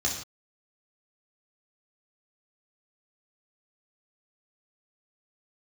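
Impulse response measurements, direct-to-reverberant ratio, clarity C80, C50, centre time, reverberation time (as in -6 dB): -3.0 dB, 8.5 dB, 5.5 dB, 31 ms, no single decay rate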